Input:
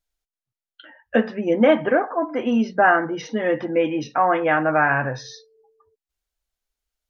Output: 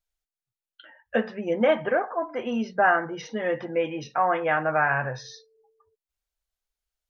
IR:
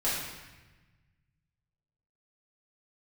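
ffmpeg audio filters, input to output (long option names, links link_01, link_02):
-af "equalizer=frequency=280:width=3.3:gain=-11,volume=-4dB"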